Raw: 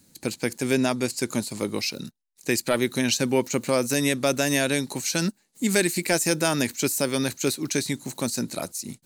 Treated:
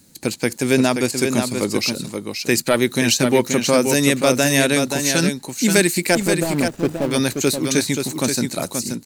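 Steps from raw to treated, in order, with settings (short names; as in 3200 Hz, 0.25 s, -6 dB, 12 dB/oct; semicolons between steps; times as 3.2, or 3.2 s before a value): 6.15–7.11 median filter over 41 samples; echo 0.529 s -6 dB; gain +6 dB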